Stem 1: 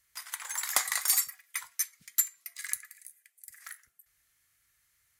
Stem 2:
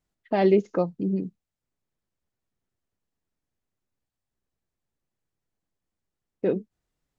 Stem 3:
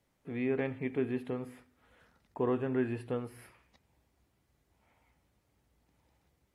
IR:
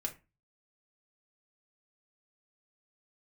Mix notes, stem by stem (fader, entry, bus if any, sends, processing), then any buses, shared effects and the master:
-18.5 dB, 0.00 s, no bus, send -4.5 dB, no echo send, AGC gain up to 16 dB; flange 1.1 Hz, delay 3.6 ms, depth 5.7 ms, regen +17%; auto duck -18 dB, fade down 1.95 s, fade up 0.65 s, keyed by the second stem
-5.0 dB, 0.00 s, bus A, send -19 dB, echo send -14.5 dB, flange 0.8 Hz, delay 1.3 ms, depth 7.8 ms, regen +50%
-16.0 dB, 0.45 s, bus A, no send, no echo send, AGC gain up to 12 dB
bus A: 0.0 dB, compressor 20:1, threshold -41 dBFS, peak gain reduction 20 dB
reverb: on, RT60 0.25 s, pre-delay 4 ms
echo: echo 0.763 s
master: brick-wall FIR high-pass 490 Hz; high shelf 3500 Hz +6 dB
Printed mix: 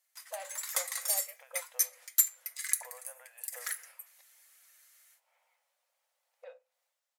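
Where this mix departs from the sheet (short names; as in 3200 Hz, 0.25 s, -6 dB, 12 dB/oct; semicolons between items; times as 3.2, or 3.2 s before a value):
stem 1 -18.5 dB -> -11.0 dB; stem 2: missing flange 0.8 Hz, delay 1.3 ms, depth 7.8 ms, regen +50%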